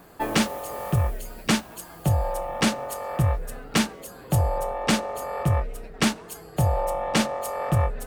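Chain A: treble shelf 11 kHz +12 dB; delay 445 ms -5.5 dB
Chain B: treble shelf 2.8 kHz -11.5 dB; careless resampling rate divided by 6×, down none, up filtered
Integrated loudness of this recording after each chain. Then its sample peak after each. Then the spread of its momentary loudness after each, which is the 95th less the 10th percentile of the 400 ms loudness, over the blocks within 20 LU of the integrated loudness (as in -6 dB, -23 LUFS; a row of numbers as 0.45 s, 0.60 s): -24.5 LUFS, -27.0 LUFS; -8.0 dBFS, -12.0 dBFS; 5 LU, 8 LU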